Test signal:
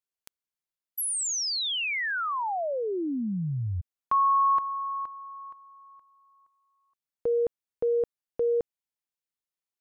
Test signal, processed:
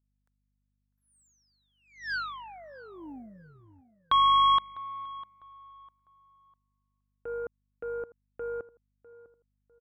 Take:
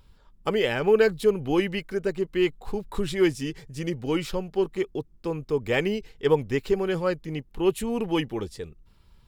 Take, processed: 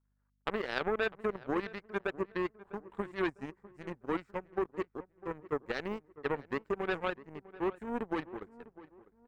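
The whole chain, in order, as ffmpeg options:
-filter_complex "[0:a]highpass=f=150:p=1,adynamicequalizer=threshold=0.02:dfrequency=280:dqfactor=1.5:tfrequency=280:tqfactor=1.5:attack=5:release=100:ratio=0.417:range=2:mode=boostabove:tftype=bell,aexciter=amount=1.1:drive=1.5:freq=7100,alimiter=limit=0.133:level=0:latency=1:release=47,acrusher=bits=9:mix=0:aa=0.000001,aeval=exprs='val(0)+0.00355*(sin(2*PI*50*n/s)+sin(2*PI*2*50*n/s)/2+sin(2*PI*3*50*n/s)/3+sin(2*PI*4*50*n/s)/4+sin(2*PI*5*50*n/s)/5)':c=same,highshelf=f=2300:t=q:w=3:g=-12.5,aeval=exprs='0.211*(cos(1*acos(clip(val(0)/0.211,-1,1)))-cos(1*PI/2))+0.0668*(cos(3*acos(clip(val(0)/0.211,-1,1)))-cos(3*PI/2))+0.00188*(cos(5*acos(clip(val(0)/0.211,-1,1)))-cos(5*PI/2))+0.00168*(cos(7*acos(clip(val(0)/0.211,-1,1)))-cos(7*PI/2))':c=same,asplit=2[s0][s1];[s1]adelay=651,lowpass=f=1600:p=1,volume=0.133,asplit=2[s2][s3];[s3]adelay=651,lowpass=f=1600:p=1,volume=0.35,asplit=2[s4][s5];[s5]adelay=651,lowpass=f=1600:p=1,volume=0.35[s6];[s0][s2][s4][s6]amix=inputs=4:normalize=0"

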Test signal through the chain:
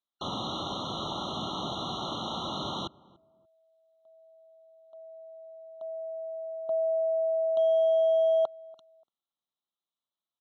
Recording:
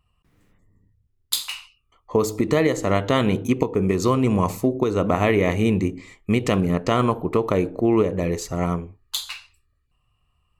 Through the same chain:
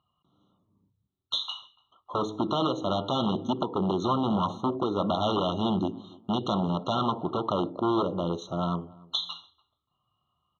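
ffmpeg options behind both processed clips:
-filter_complex "[0:a]aeval=exprs='0.15*(abs(mod(val(0)/0.15+3,4)-2)-1)':c=same,highpass=190,equalizer=f=270:t=q:w=4:g=-3,equalizer=f=460:t=q:w=4:g=-10,equalizer=f=2700:t=q:w=4:g=-5,equalizer=f=3900:t=q:w=4:g=5,lowpass=f=4200:w=0.5412,lowpass=f=4200:w=1.3066,asplit=2[s0][s1];[s1]adelay=290,lowpass=f=950:p=1,volume=0.0841,asplit=2[s2][s3];[s3]adelay=290,lowpass=f=950:p=1,volume=0.25[s4];[s0][s2][s4]amix=inputs=3:normalize=0,afftfilt=real='re*eq(mod(floor(b*sr/1024/1400),2),0)':imag='im*eq(mod(floor(b*sr/1024/1400),2),0)':win_size=1024:overlap=0.75"

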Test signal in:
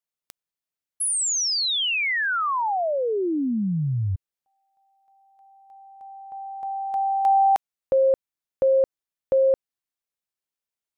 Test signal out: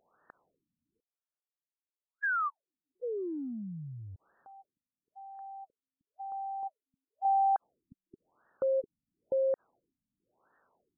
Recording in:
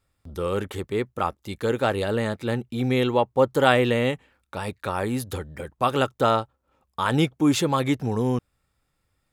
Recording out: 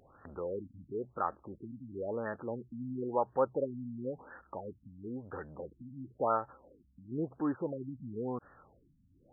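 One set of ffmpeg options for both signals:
-af "acompressor=mode=upward:threshold=0.0708:ratio=2.5:attack=2.3:release=29:knee=2.83:detection=peak,aemphasis=mode=production:type=riaa,afftfilt=real='re*lt(b*sr/1024,260*pow(1900/260,0.5+0.5*sin(2*PI*0.97*pts/sr)))':imag='im*lt(b*sr/1024,260*pow(1900/260,0.5+0.5*sin(2*PI*0.97*pts/sr)))':win_size=1024:overlap=0.75,volume=0.422"

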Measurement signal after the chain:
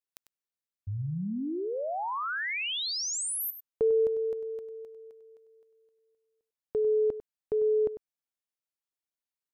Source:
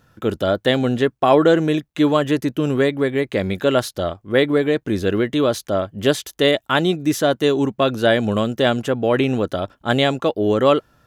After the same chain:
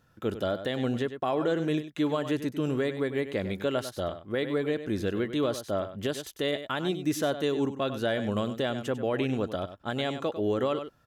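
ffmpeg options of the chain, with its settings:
-af "aecho=1:1:98:0.251,alimiter=limit=0.355:level=0:latency=1:release=197,volume=0.355"

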